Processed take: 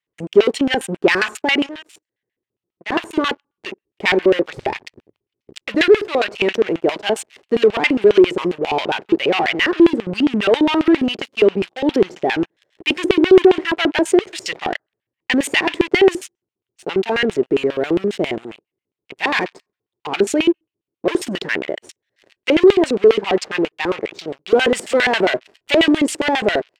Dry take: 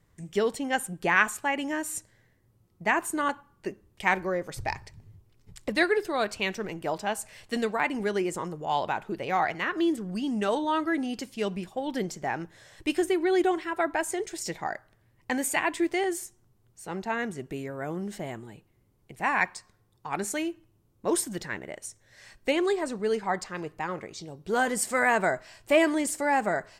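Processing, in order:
0:01.66–0:02.92: downward compressor 2 to 1, threshold −54 dBFS, peak gain reduction 18 dB
leveller curve on the samples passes 5
auto-filter band-pass square 7.4 Hz 390–2,800 Hz
level +5 dB

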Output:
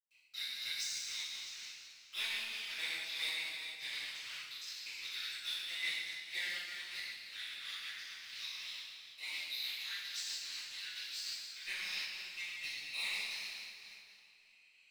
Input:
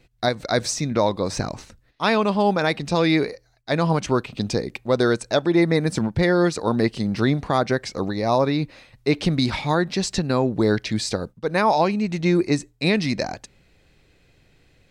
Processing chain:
adaptive Wiener filter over 25 samples
Butterworth high-pass 2,200 Hz 36 dB per octave
high-shelf EQ 6,200 Hz −9.5 dB
leveller curve on the samples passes 2
upward compression, threshold −32 dBFS
leveller curve on the samples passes 1
convolution reverb RT60 2.6 s, pre-delay 108 ms
amplitude modulation by smooth noise, depth 55%
level +9.5 dB

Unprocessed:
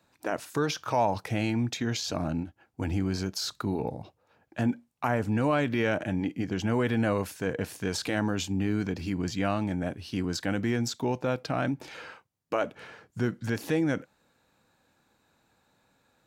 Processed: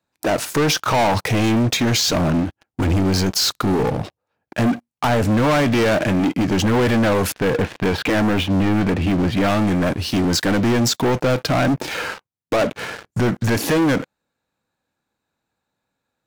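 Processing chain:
0:07.32–0:09.48: low-pass filter 3,000 Hz 24 dB per octave
leveller curve on the samples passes 5

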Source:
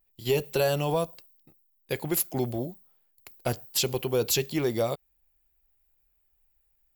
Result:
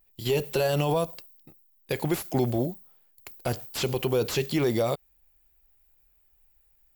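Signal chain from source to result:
brickwall limiter −22 dBFS, peak gain reduction 9 dB
slew-rate limiting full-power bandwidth 90 Hz
level +6 dB

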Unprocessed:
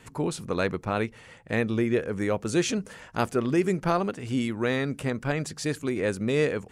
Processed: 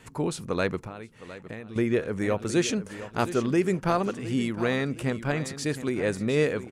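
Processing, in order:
repeating echo 712 ms, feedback 35%, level −13.5 dB
0:00.78–0:01.76: downward compressor 10 to 1, threshold −36 dBFS, peak gain reduction 16.5 dB

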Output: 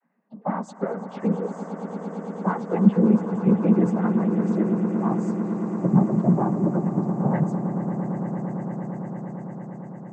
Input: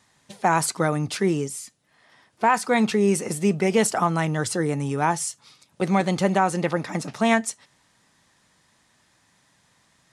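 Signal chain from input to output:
vocoder with a gliding carrier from A3, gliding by −6 semitones
spectral peaks only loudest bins 16
parametric band 330 Hz +6.5 dB 0.22 octaves
cochlear-implant simulation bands 16
on a send: echo that builds up and dies away 113 ms, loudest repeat 8, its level −14 dB

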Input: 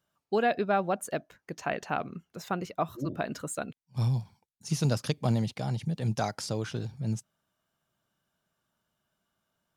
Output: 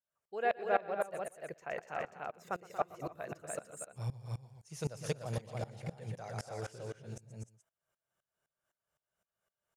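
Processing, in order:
octave-band graphic EQ 250/500/2,000/4,000/8,000 Hz −11/+8/+5/−6/+5 dB
on a send: multi-tap delay 119/234/258/293/416 ms −10/−11/−19/−4/−16 dB
on the sum: tremolo with a ramp in dB swelling 3.9 Hz, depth 21 dB
level −5.5 dB

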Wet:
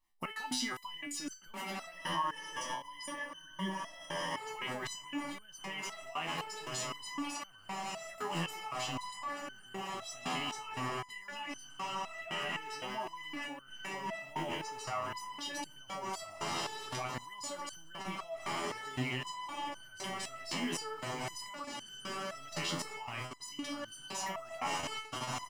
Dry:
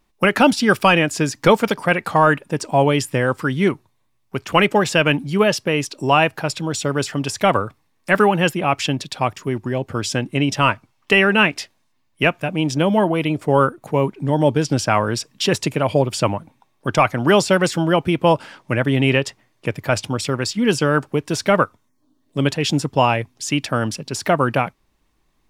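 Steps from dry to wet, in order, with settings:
mu-law and A-law mismatch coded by A
parametric band 130 Hz −12.5 dB 2.4 octaves
feedback delay with all-pass diffusion 1,335 ms, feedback 58%, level −8 dB
brickwall limiter −13.5 dBFS, peak gain reduction 10.5 dB
0:01.92–0:04.37: EQ curve with evenly spaced ripples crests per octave 1.2, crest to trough 14 dB
output level in coarse steps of 16 dB
comb filter 1 ms, depth 59%
speech leveller 2 s
step-sequenced resonator 3.9 Hz 84–1,500 Hz
level +4.5 dB

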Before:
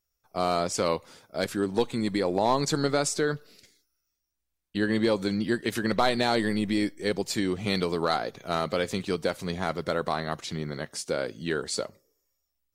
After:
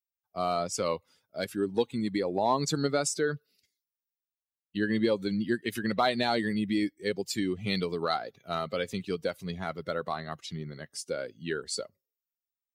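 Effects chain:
spectral dynamics exaggerated over time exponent 1.5
high-pass filter 72 Hz

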